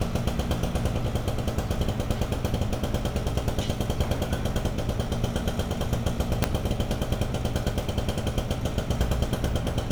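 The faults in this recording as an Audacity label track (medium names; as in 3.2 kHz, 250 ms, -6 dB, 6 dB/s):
6.440000	6.440000	pop -5 dBFS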